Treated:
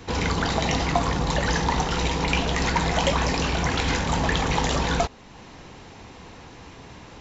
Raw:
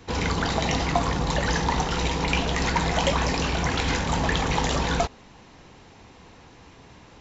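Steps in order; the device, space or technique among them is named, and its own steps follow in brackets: parallel compression (in parallel at -1 dB: compression, threshold -42 dBFS, peak gain reduction 22.5 dB)

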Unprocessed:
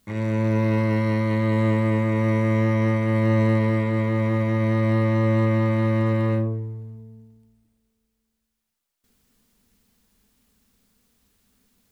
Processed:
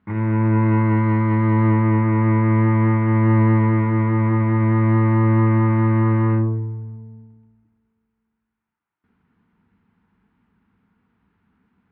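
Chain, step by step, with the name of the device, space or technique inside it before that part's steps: bass cabinet (cabinet simulation 61–2300 Hz, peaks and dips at 100 Hz +6 dB, 170 Hz +9 dB, 320 Hz +5 dB, 560 Hz -9 dB, 920 Hz +8 dB, 1.4 kHz +6 dB); trim +1 dB

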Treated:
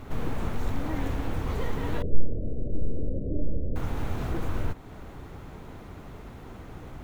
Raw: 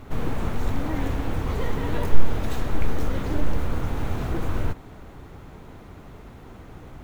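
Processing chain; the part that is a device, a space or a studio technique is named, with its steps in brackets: 2.02–3.76 s: steep low-pass 610 Hz 72 dB/octave; parallel compression (in parallel at -0.5 dB: compression, threshold -33 dBFS, peak gain reduction 25.5 dB); on the sum: trim -5.5 dB

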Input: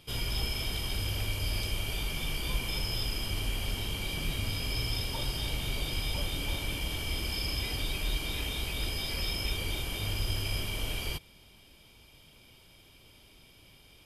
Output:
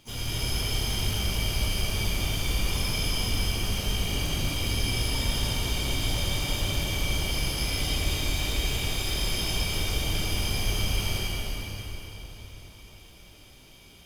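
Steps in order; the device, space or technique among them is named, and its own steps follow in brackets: shimmer-style reverb (harmony voices +12 st -7 dB; reverberation RT60 4.3 s, pre-delay 60 ms, DRR -5.5 dB); trim -2 dB

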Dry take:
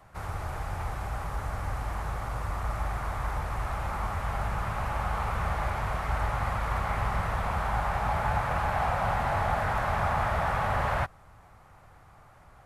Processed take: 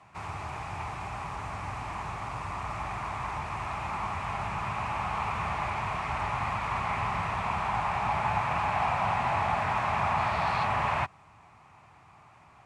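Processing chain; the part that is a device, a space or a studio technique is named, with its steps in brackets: 10.17–10.63 s: peaking EQ 4.3 kHz +3.5 dB -> +14 dB 0.38 oct; car door speaker (cabinet simulation 110–8600 Hz, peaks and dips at 520 Hz -9 dB, 1 kHz +5 dB, 1.5 kHz -5 dB, 2.5 kHz +9 dB)

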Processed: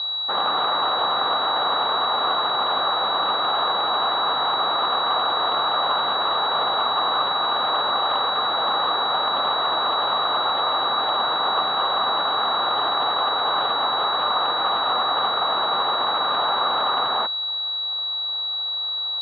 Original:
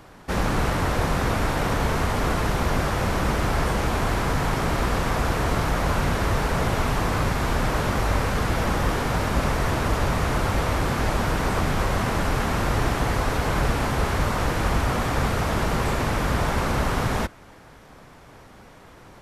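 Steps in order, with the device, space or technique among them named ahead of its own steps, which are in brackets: distance through air 250 m; toy sound module (decimation joined by straight lines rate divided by 8×; class-D stage that switches slowly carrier 3.9 kHz; cabinet simulation 770–4100 Hz, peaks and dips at 780 Hz +5 dB, 1.2 kHz +8 dB, 2.3 kHz -6 dB, 3.6 kHz +7 dB); trim +6 dB

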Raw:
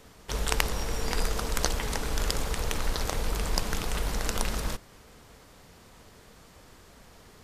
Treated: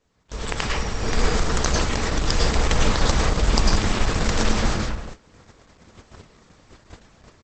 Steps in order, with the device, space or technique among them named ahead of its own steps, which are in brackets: speakerphone in a meeting room (reverberation RT60 0.70 s, pre-delay 96 ms, DRR -2 dB; speakerphone echo 110 ms, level -11 dB; level rider gain up to 13 dB; gate -32 dBFS, range -16 dB; Opus 12 kbps 48 kHz)

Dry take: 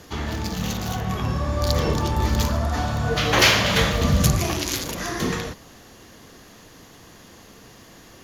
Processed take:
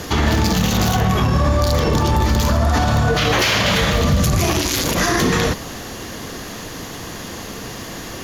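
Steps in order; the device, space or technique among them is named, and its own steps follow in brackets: loud club master (compression 2.5:1, threshold -24 dBFS, peak gain reduction 9 dB; hard clipper -13.5 dBFS, distortion -35 dB; loudness maximiser +23 dB); trim -7 dB

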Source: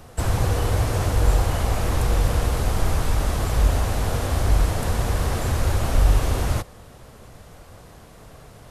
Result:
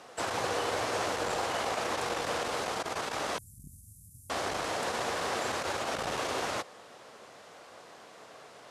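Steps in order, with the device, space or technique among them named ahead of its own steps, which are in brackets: 3.38–4.30 s: inverse Chebyshev band-stop 560–2600 Hz, stop band 80 dB; public-address speaker with an overloaded transformer (transformer saturation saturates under 68 Hz; band-pass 330–6700 Hz); bass shelf 420 Hz -5.5 dB

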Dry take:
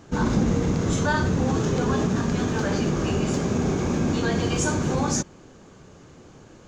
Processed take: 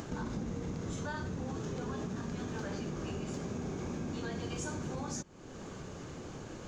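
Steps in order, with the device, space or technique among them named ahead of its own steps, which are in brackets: upward and downward compression (upward compressor, threshold -25 dBFS; compression 4:1, threshold -28 dBFS, peak gain reduction 9.5 dB); trim -8 dB

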